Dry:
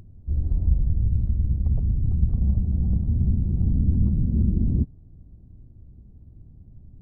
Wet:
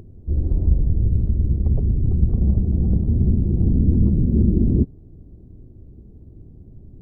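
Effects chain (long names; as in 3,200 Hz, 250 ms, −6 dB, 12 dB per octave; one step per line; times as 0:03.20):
parametric band 390 Hz +11.5 dB 1.2 octaves
level +3 dB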